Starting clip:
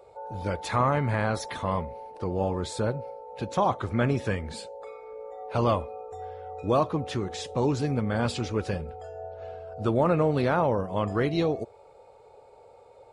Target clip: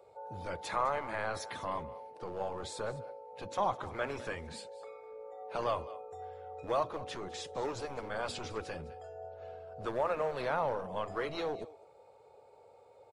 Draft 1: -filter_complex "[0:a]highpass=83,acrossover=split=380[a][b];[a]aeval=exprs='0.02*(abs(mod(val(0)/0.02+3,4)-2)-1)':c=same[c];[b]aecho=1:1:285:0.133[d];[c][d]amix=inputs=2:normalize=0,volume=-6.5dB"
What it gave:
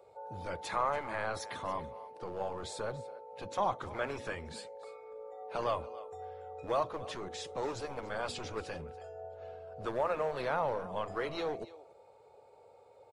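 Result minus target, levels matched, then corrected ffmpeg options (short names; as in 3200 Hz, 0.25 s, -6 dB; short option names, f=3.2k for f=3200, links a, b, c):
echo 79 ms late
-filter_complex "[0:a]highpass=83,acrossover=split=380[a][b];[a]aeval=exprs='0.02*(abs(mod(val(0)/0.02+3,4)-2)-1)':c=same[c];[b]aecho=1:1:206:0.133[d];[c][d]amix=inputs=2:normalize=0,volume=-6.5dB"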